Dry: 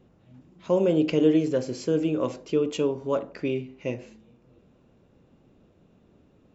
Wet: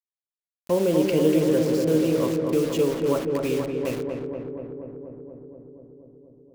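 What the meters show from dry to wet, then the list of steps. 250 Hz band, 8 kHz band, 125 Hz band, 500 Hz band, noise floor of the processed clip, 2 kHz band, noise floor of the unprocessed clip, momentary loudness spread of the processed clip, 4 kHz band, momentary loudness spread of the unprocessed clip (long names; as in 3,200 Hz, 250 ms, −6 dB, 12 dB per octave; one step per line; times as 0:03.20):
+2.5 dB, can't be measured, +4.0 dB, +3.0 dB, below −85 dBFS, +3.0 dB, −61 dBFS, 18 LU, +3.5 dB, 11 LU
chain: bit-depth reduction 6 bits, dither none
on a send: feedback echo with a low-pass in the loop 240 ms, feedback 79%, low-pass 1,500 Hz, level −3.5 dB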